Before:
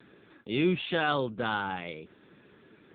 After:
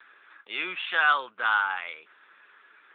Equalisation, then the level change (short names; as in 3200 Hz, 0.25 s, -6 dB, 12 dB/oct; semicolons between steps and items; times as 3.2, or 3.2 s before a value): resonant high-pass 1300 Hz, resonance Q 1.9; air absorption 240 m; +6.0 dB